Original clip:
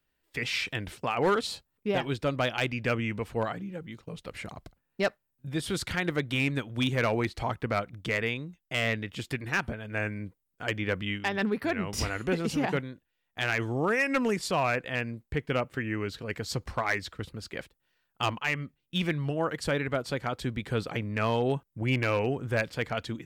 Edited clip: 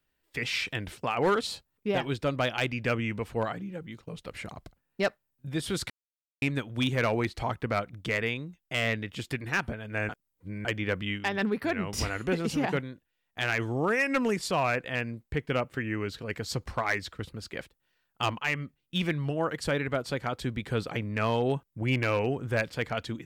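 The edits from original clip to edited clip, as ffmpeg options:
-filter_complex "[0:a]asplit=5[s0][s1][s2][s3][s4];[s0]atrim=end=5.9,asetpts=PTS-STARTPTS,afade=t=out:st=5.896:d=0.004:c=hsin[s5];[s1]atrim=start=5.9:end=6.42,asetpts=PTS-STARTPTS,volume=0[s6];[s2]atrim=start=6.42:end=10.092,asetpts=PTS-STARTPTS,afade=t=in:d=0.004:c=hsin[s7];[s3]atrim=start=10.088:end=10.652,asetpts=PTS-STARTPTS,areverse[s8];[s4]atrim=start=10.648[s9];[s5][s6][s7]concat=n=3:v=0:a=1[s10];[s10][s8]acrossfade=d=0.004:c1=hsin:c2=hsin[s11];[s11][s9]acrossfade=d=0.004:c1=hsin:c2=hsin"

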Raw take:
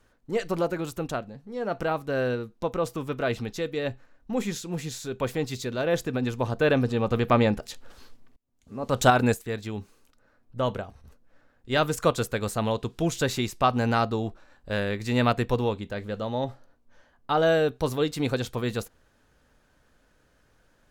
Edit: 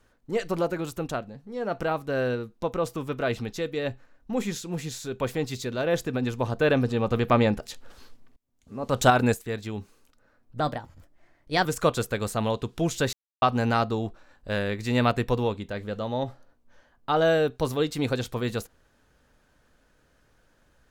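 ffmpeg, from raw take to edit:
-filter_complex "[0:a]asplit=5[s0][s1][s2][s3][s4];[s0]atrim=end=10.604[s5];[s1]atrim=start=10.6:end=11.86,asetpts=PTS-STARTPTS,asetrate=52920,aresample=44100[s6];[s2]atrim=start=11.856:end=13.34,asetpts=PTS-STARTPTS,afade=t=out:st=1.48:d=0.004:c=hsin[s7];[s3]atrim=start=13.34:end=13.63,asetpts=PTS-STARTPTS,volume=0[s8];[s4]atrim=start=13.63,asetpts=PTS-STARTPTS,afade=t=in:d=0.004:c=hsin[s9];[s5][s6]acrossfade=d=0.004:c1=hsin:c2=hsin[s10];[s7][s8][s9]concat=n=3:v=0:a=1[s11];[s10][s11]acrossfade=d=0.004:c1=hsin:c2=hsin"

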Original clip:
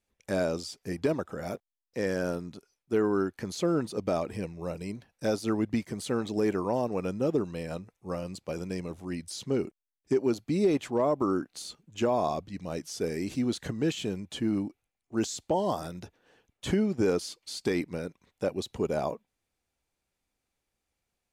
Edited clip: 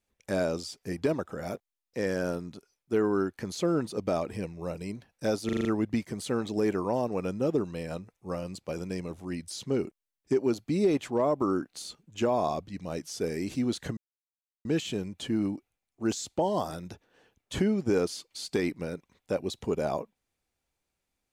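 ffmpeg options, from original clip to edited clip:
-filter_complex "[0:a]asplit=7[s0][s1][s2][s3][s4][s5][s6];[s0]atrim=end=5.492[s7];[s1]atrim=start=5.448:end=5.492[s8];[s2]atrim=start=5.448:end=5.492[s9];[s3]atrim=start=5.448:end=5.492[s10];[s4]atrim=start=5.448:end=5.492[s11];[s5]atrim=start=5.448:end=13.77,asetpts=PTS-STARTPTS,afade=t=out:st=8.318:d=0.004:c=hsin,apad=pad_dur=0.68[s12];[s6]atrim=start=13.77,asetpts=PTS-STARTPTS,afade=t=in:d=0.004:c=hsin[s13];[s7][s8]acrossfade=d=0.004:c1=hsin:c2=hsin[s14];[s14][s9]acrossfade=d=0.004:c1=hsin:c2=hsin[s15];[s15][s10]acrossfade=d=0.004:c1=hsin:c2=hsin[s16];[s16][s11]acrossfade=d=0.004:c1=hsin:c2=hsin[s17];[s12][s13]concat=n=2:v=0:a=1[s18];[s17][s18]acrossfade=d=0.004:c1=hsin:c2=hsin"

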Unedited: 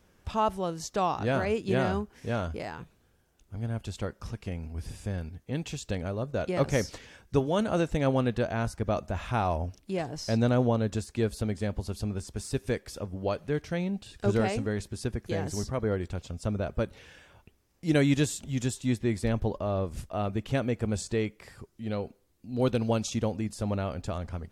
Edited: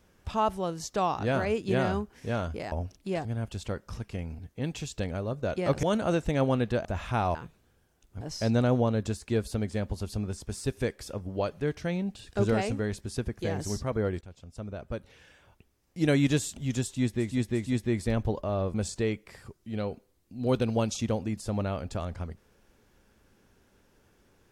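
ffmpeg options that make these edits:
-filter_complex "[0:a]asplit=12[s0][s1][s2][s3][s4][s5][s6][s7][s8][s9][s10][s11];[s0]atrim=end=2.722[s12];[s1]atrim=start=9.548:end=10.082[s13];[s2]atrim=start=3.578:end=4.722[s14];[s3]atrim=start=5.298:end=6.742[s15];[s4]atrim=start=7.488:end=8.512[s16];[s5]atrim=start=9.048:end=9.552[s17];[s6]atrim=start=2.718:end=3.582[s18];[s7]atrim=start=10.078:end=16.08,asetpts=PTS-STARTPTS,afade=t=out:st=5.998:d=0.004:c=hsin:silence=0.211349[s19];[s8]atrim=start=16.08:end=19.28,asetpts=PTS-STARTPTS,afade=t=in:d=2.04:silence=0.211349[s20];[s9]atrim=start=18.69:end=19.28[s21];[s10]atrim=start=18.69:end=19.912[s22];[s11]atrim=start=20.868[s23];[s12][s13]acrossfade=d=0.004:c1=hsin:c2=hsin[s24];[s24][s14]acrossfade=d=0.004:c1=hsin:c2=hsin[s25];[s25][s15]acrossfade=d=0.004:c1=hsin:c2=hsin[s26];[s26][s16]acrossfade=d=0.004:c1=hsin:c2=hsin[s27];[s27][s17]acrossfade=d=0.004:c1=hsin:c2=hsin[s28];[s28][s18]acrossfade=d=0.004:c1=hsin:c2=hsin[s29];[s19][s20]concat=n=2:v=0:a=1[s30];[s29][s30]acrossfade=d=0.004:c1=hsin:c2=hsin[s31];[s31][s21]acrossfade=d=0.24:c1=tri:c2=tri[s32];[s32][s22]acrossfade=d=0.24:c1=tri:c2=tri[s33];[s33][s23]acrossfade=d=0.004:c1=hsin:c2=hsin"

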